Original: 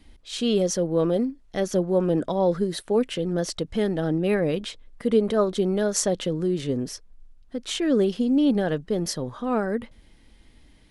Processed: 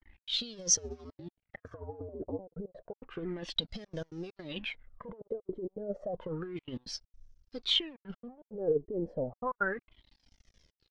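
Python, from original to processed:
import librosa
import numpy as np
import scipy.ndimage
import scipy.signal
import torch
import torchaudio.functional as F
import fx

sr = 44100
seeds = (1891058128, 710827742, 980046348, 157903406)

y = fx.over_compress(x, sr, threshold_db=-26.0, ratio=-0.5)
y = fx.step_gate(y, sr, bpm=164, pattern='xx.xxxxxxxxx.x.', floor_db=-24.0, edge_ms=4.5)
y = np.sign(y) * np.maximum(np.abs(y) - 10.0 ** (-48.0 / 20.0), 0.0)
y = fx.ring_mod(y, sr, carrier_hz=88.0, at=(0.76, 2.38), fade=0.02)
y = fx.filter_lfo_lowpass(y, sr, shape='sine', hz=0.31, low_hz=440.0, high_hz=6000.0, q=6.2)
y = fx.comb_cascade(y, sr, direction='falling', hz=0.9)
y = F.gain(torch.from_numpy(y), -7.5).numpy()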